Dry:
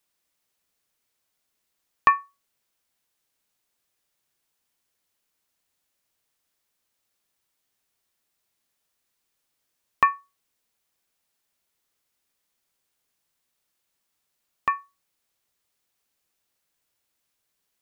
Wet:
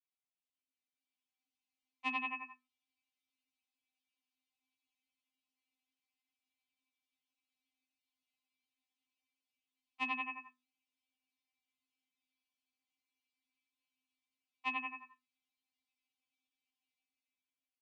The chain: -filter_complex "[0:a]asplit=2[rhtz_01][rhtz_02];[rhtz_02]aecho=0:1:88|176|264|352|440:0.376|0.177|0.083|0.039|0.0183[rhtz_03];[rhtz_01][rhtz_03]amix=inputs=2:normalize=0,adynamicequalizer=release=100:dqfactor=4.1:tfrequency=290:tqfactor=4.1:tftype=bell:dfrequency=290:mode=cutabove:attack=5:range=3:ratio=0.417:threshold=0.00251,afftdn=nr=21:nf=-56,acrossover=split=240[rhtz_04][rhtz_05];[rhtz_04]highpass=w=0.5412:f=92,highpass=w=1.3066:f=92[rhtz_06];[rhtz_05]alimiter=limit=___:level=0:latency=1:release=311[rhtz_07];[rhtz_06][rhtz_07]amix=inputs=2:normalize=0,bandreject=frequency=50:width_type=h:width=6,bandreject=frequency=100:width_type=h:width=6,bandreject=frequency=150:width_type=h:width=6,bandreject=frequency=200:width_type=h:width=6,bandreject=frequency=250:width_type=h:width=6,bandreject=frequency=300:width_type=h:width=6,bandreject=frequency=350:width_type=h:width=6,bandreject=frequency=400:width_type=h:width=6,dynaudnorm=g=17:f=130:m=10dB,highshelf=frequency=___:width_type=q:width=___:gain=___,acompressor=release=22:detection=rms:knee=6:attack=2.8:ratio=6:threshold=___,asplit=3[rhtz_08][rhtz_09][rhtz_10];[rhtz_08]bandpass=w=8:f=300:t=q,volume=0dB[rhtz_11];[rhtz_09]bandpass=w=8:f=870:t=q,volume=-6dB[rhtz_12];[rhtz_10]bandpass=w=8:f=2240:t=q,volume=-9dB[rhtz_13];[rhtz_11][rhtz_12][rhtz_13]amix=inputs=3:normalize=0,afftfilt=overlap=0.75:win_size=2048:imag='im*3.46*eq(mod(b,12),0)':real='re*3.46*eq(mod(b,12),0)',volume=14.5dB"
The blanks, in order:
-16dB, 2300, 1.5, 8.5, -22dB